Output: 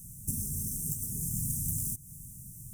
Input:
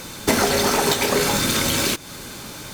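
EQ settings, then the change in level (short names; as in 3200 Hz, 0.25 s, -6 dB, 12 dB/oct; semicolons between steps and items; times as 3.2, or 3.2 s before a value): Chebyshev band-stop 150–8700 Hz, order 3; elliptic band-stop 2200–5400 Hz, stop band 50 dB; -4.5 dB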